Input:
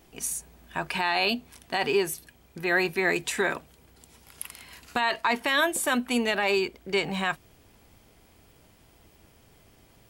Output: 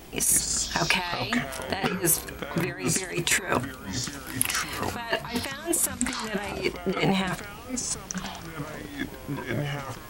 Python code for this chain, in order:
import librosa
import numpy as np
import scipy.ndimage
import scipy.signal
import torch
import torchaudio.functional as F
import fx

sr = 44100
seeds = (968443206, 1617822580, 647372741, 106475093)

y = fx.bass_treble(x, sr, bass_db=9, treble_db=-7, at=(5.89, 6.5))
y = fx.over_compress(y, sr, threshold_db=-32.0, ratio=-0.5)
y = fx.echo_pitch(y, sr, ms=121, semitones=-5, count=3, db_per_echo=-6.0)
y = F.gain(torch.from_numpy(y), 5.5).numpy()